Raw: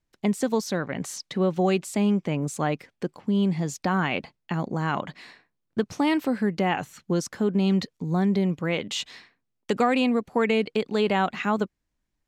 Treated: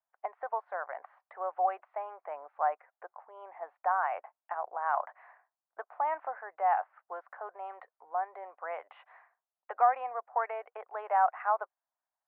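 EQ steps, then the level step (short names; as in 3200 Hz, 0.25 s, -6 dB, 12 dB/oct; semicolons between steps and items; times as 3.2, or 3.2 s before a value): elliptic high-pass 690 Hz, stop band 70 dB; Bessel low-pass 920 Hz, order 6; air absorption 67 m; +4.0 dB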